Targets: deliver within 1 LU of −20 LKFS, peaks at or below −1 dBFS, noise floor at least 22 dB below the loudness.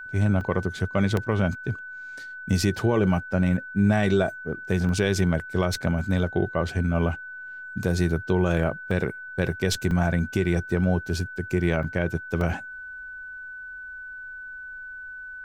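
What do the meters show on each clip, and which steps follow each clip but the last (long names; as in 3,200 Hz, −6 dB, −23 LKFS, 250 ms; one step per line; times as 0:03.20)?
number of dropouts 7; longest dropout 1.9 ms; interfering tone 1,500 Hz; level of the tone −36 dBFS; integrated loudness −25.0 LKFS; sample peak −10.5 dBFS; target loudness −20.0 LKFS
→ repair the gap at 0:00.41/0:01.17/0:04.89/0:08.91/0:09.91/0:11.83/0:12.41, 1.9 ms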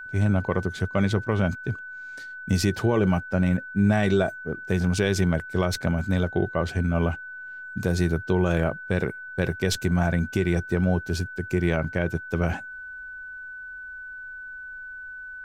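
number of dropouts 0; interfering tone 1,500 Hz; level of the tone −36 dBFS
→ notch filter 1,500 Hz, Q 30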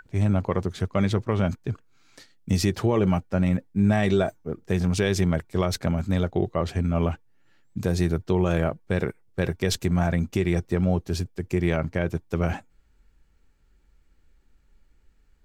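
interfering tone none found; integrated loudness −25.5 LKFS; sample peak −10.5 dBFS; target loudness −20.0 LKFS
→ level +5.5 dB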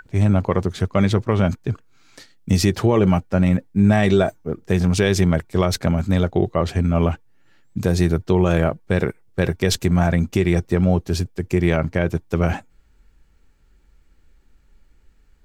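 integrated loudness −20.0 LKFS; sample peak −5.0 dBFS; background noise floor −56 dBFS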